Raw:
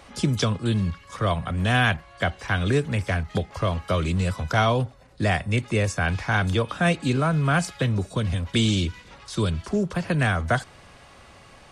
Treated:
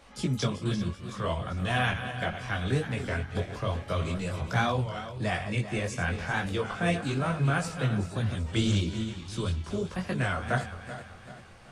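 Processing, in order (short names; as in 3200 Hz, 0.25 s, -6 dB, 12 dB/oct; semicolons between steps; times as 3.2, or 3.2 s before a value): regenerating reverse delay 0.192 s, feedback 67%, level -10 dB; chorus voices 6, 0.95 Hz, delay 19 ms, depth 4.8 ms; record warp 33 1/3 rpm, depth 100 cents; gain -3.5 dB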